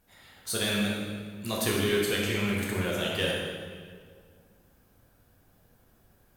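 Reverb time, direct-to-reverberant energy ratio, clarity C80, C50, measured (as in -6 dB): 2.0 s, -4.0 dB, 2.0 dB, -0.5 dB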